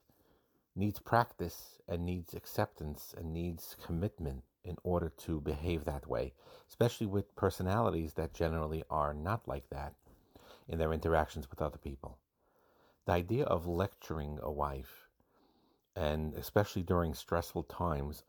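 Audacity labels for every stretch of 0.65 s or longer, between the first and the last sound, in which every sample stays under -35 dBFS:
9.870000	10.700000	silence
12.070000	13.080000	silence
14.800000	15.970000	silence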